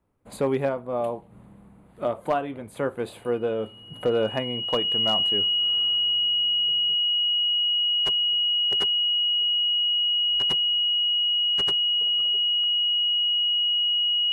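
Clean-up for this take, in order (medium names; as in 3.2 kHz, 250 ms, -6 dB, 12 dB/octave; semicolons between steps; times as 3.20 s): clip repair -15 dBFS; band-stop 2.9 kHz, Q 30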